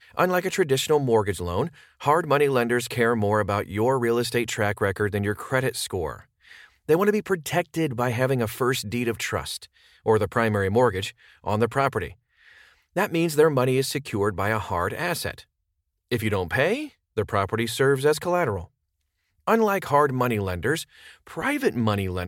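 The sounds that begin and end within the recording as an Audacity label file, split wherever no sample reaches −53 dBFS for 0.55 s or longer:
16.090000	18.680000	sound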